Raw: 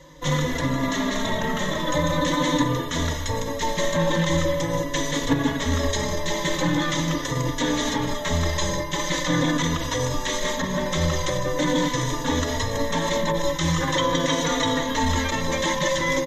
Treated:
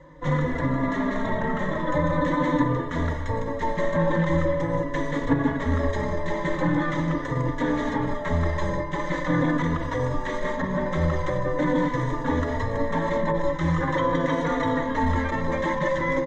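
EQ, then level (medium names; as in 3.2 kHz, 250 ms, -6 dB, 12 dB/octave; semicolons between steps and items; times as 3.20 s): distance through air 140 m; high-order bell 4.1 kHz -12 dB; 0.0 dB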